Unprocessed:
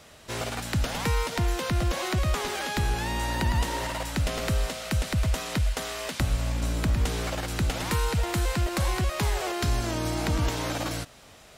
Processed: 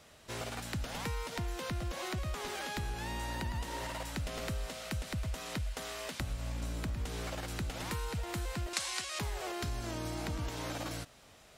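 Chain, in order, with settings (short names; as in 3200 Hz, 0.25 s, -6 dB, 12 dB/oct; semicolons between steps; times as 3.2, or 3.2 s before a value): compressor 3:1, threshold -27 dBFS, peak gain reduction 6 dB; 8.73–9.19 weighting filter ITU-R 468; gain -7.5 dB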